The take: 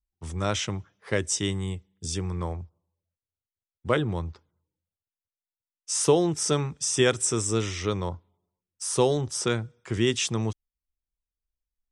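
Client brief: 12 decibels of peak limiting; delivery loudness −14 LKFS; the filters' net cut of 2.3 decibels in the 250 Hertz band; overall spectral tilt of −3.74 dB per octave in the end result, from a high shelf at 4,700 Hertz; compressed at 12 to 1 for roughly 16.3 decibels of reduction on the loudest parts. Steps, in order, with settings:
parametric band 250 Hz −3.5 dB
high-shelf EQ 4,700 Hz +9 dB
downward compressor 12 to 1, threshold −32 dBFS
level +27 dB
brickwall limiter −4 dBFS

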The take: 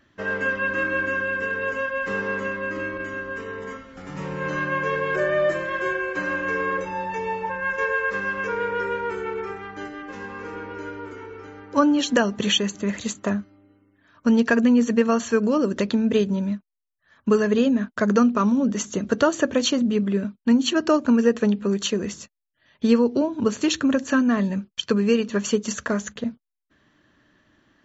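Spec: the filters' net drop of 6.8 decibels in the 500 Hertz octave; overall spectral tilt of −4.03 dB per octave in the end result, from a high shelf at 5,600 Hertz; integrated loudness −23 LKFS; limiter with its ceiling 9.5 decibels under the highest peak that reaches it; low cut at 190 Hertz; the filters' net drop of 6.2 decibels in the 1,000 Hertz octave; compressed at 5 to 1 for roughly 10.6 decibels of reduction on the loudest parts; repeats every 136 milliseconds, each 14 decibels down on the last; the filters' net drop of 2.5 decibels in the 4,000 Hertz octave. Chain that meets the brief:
high-pass filter 190 Hz
parametric band 500 Hz −6.5 dB
parametric band 1,000 Hz −6 dB
parametric band 4,000 Hz −4.5 dB
high-shelf EQ 5,600 Hz +4.5 dB
downward compressor 5 to 1, threshold −29 dBFS
brickwall limiter −27 dBFS
repeating echo 136 ms, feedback 20%, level −14 dB
level +12 dB

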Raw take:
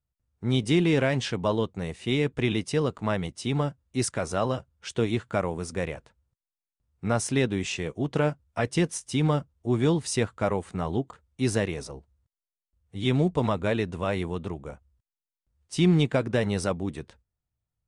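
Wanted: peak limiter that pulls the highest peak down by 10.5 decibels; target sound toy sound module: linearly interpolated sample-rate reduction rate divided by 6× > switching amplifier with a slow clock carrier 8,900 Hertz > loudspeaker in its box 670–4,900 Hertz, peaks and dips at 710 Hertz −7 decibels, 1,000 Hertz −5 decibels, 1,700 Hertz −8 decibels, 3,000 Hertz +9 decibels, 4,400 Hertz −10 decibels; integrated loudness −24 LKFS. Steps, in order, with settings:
brickwall limiter −21.5 dBFS
linearly interpolated sample-rate reduction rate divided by 6×
switching amplifier with a slow clock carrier 8,900 Hz
loudspeaker in its box 670–4,900 Hz, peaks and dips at 710 Hz −7 dB, 1,000 Hz −5 dB, 1,700 Hz −8 dB, 3,000 Hz +9 dB, 4,400 Hz −10 dB
level +18.5 dB

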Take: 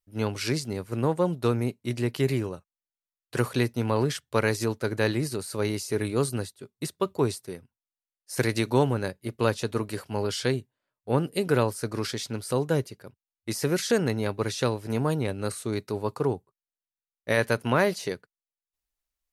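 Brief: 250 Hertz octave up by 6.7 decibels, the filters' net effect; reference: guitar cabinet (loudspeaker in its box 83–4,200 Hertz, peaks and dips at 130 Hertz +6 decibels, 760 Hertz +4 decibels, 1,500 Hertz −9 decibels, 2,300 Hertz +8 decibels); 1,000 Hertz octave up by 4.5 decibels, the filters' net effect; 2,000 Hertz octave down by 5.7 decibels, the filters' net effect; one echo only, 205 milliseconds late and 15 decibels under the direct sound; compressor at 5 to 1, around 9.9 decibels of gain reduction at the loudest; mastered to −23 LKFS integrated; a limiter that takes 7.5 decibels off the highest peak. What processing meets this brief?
parametric band 250 Hz +8 dB
parametric band 1,000 Hz +6 dB
parametric band 2,000 Hz −9 dB
downward compressor 5 to 1, threshold −25 dBFS
brickwall limiter −19 dBFS
loudspeaker in its box 83–4,200 Hz, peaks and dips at 130 Hz +6 dB, 760 Hz +4 dB, 1,500 Hz −9 dB, 2,300 Hz +8 dB
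single-tap delay 205 ms −15 dB
level +9 dB

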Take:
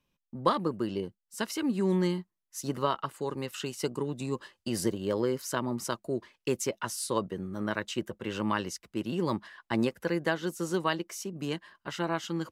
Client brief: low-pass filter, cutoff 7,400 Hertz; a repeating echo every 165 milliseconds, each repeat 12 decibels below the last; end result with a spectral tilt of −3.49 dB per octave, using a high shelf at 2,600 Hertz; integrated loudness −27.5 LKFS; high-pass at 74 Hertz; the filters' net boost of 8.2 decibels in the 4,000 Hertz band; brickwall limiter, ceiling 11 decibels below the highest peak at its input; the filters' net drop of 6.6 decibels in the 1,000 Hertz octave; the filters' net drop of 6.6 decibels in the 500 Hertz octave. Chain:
high-pass filter 74 Hz
low-pass filter 7,400 Hz
parametric band 500 Hz −8 dB
parametric band 1,000 Hz −7.5 dB
high-shelf EQ 2,600 Hz +6 dB
parametric band 4,000 Hz +7 dB
brickwall limiter −22 dBFS
repeating echo 165 ms, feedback 25%, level −12 dB
level +7 dB

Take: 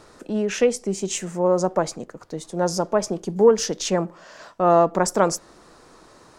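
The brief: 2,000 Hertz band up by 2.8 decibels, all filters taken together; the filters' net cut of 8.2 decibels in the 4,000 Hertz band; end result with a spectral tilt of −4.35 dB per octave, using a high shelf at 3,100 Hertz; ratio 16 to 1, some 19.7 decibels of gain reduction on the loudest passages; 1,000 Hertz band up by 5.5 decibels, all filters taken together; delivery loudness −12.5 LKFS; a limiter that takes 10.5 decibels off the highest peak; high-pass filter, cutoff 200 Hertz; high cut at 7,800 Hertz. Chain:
high-pass filter 200 Hz
low-pass filter 7,800 Hz
parametric band 1,000 Hz +7.5 dB
parametric band 2,000 Hz +4 dB
high-shelf EQ 3,100 Hz −4.5 dB
parametric band 4,000 Hz −9 dB
downward compressor 16 to 1, threshold −27 dBFS
level +24 dB
brickwall limiter −1 dBFS

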